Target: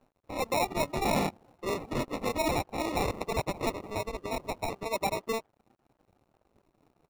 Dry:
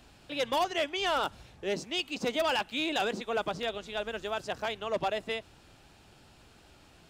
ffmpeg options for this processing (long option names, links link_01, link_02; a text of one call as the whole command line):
ffmpeg -i in.wav -filter_complex "[0:a]highpass=frequency=410:poles=1,asplit=2[link_01][link_02];[link_02]acompressor=threshold=-44dB:ratio=6,volume=0dB[link_03];[link_01][link_03]amix=inputs=2:normalize=0,asplit=3[link_04][link_05][link_06];[link_04]afade=type=out:start_time=0.87:duration=0.02[link_07];[link_05]asplit=2[link_08][link_09];[link_09]adelay=24,volume=-3dB[link_10];[link_08][link_10]amix=inputs=2:normalize=0,afade=type=in:start_time=0.87:duration=0.02,afade=type=out:start_time=2.31:duration=0.02[link_11];[link_06]afade=type=in:start_time=2.31:duration=0.02[link_12];[link_07][link_11][link_12]amix=inputs=3:normalize=0,asettb=1/sr,asplit=3[link_13][link_14][link_15];[link_13]atrim=end=3.004[link_16];[link_14]atrim=start=3:end=3.87,asetpts=PTS-STARTPTS,afade=type=in:duration=0.004:curve=qsin,afade=type=out:start_time=0.866:duration=0.004:curve=qsin,tiltshelf=frequency=800:gain=-6[link_17];[link_15]atrim=start=3.866[link_18];[link_16][link_17]acrossfade=duration=0.004:curve1=hsin:curve2=qsin[link_19];[link_19][link_18]acrossfade=duration=0.004:curve1=qsin:curve2=hsin,acrusher=samples=28:mix=1:aa=0.000001,afftdn=noise_reduction=13:noise_floor=-46,aeval=exprs='sgn(val(0))*max(abs(val(0))-0.001,0)':channel_layout=same" out.wav